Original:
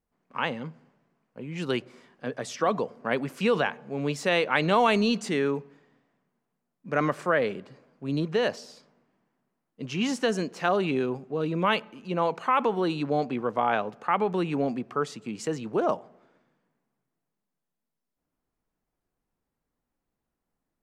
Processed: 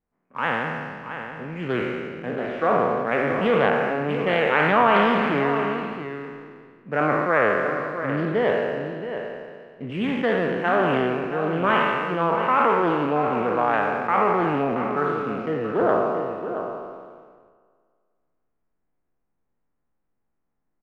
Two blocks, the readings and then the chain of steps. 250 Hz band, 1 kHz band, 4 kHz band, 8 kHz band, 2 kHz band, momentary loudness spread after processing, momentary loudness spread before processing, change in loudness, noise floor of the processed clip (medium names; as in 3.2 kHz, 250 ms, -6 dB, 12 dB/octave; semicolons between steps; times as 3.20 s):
+3.5 dB, +7.0 dB, -1.0 dB, under -15 dB, +7.0 dB, 14 LU, 11 LU, +5.0 dB, -75 dBFS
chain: spectral sustain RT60 2.00 s; inverse Chebyshev low-pass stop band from 9.3 kHz, stop band 70 dB; in parallel at -7 dB: hysteresis with a dead band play -35 dBFS; on the sum: delay 676 ms -9.5 dB; loudspeaker Doppler distortion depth 0.19 ms; trim -2.5 dB